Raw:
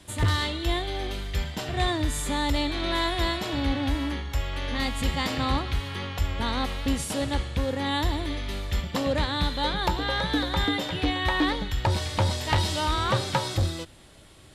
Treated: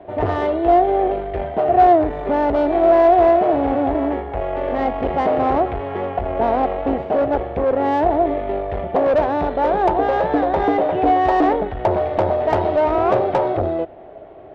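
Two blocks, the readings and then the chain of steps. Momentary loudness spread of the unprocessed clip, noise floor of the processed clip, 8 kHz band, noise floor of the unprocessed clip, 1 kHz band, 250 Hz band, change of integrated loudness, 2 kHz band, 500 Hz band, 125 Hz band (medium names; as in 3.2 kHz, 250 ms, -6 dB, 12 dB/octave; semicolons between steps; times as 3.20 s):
6 LU, -37 dBFS, under -20 dB, -50 dBFS, +13.5 dB, +7.5 dB, +9.0 dB, 0.0 dB, +17.0 dB, -2.5 dB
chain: low-pass 2.4 kHz 24 dB/octave; peaking EQ 620 Hz +12.5 dB 0.63 oct; valve stage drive 22 dB, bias 0.4; small resonant body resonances 410/690 Hz, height 17 dB, ringing for 20 ms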